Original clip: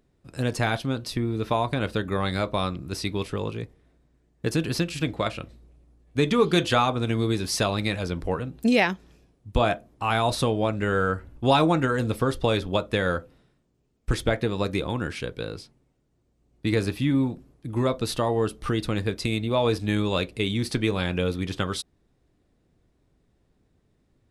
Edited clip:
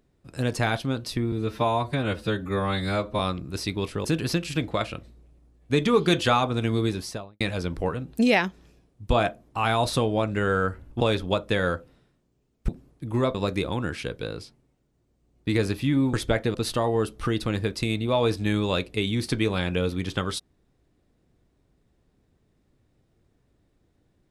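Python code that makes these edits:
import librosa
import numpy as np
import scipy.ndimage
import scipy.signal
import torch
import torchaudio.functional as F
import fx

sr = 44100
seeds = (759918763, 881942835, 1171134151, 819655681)

y = fx.studio_fade_out(x, sr, start_s=7.27, length_s=0.59)
y = fx.edit(y, sr, fx.stretch_span(start_s=1.32, length_s=1.25, factor=1.5),
    fx.cut(start_s=3.42, length_s=1.08),
    fx.cut(start_s=11.46, length_s=0.97),
    fx.swap(start_s=14.11, length_s=0.41, other_s=17.31, other_length_s=0.66), tone=tone)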